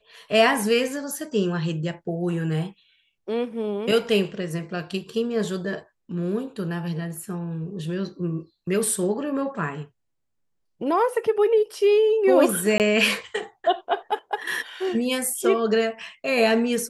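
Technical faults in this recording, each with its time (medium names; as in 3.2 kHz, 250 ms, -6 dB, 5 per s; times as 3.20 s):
12.78–12.80 s: dropout 18 ms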